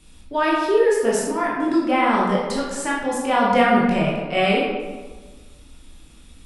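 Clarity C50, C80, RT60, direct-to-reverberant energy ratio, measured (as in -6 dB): 0.0 dB, 2.5 dB, 1.4 s, -5.5 dB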